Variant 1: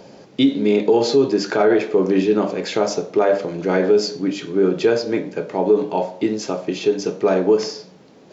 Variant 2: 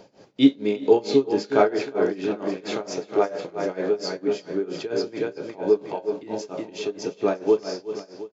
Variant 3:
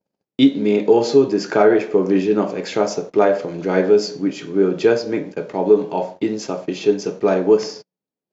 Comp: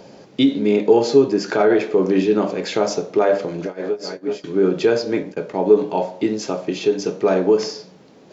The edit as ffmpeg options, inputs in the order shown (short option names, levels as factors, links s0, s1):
-filter_complex "[2:a]asplit=2[s0][s1];[0:a]asplit=4[s2][s3][s4][s5];[s2]atrim=end=0.592[s6];[s0]atrim=start=0.588:end=1.482[s7];[s3]atrim=start=1.478:end=3.662[s8];[1:a]atrim=start=3.658:end=4.442[s9];[s4]atrim=start=4.438:end=5.232[s10];[s1]atrim=start=5.228:end=5.772[s11];[s5]atrim=start=5.768[s12];[s6][s7]acrossfade=d=0.004:c1=hsin:c2=hsin[s13];[s13][s8]acrossfade=d=0.004:c1=hsin:c2=hsin[s14];[s14][s9]acrossfade=d=0.004:c1=hsin:c2=hsin[s15];[s15][s10]acrossfade=d=0.004:c1=hsin:c2=hsin[s16];[s16][s11]acrossfade=d=0.004:c1=hsin:c2=hsin[s17];[s17][s12]acrossfade=d=0.004:c1=hsin:c2=hsin"